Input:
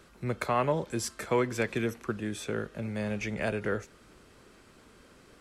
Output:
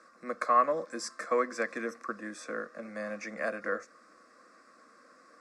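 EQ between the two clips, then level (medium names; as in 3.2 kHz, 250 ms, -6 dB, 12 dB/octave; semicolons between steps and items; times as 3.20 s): cabinet simulation 260–8800 Hz, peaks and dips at 470 Hz +9 dB, 1.1 kHz +4 dB, 1.8 kHz +5 dB, 3.1 kHz +6 dB, 5.1 kHz +7 dB; peaking EQ 1.1 kHz +13 dB 0.29 oct; static phaser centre 620 Hz, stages 8; -3.0 dB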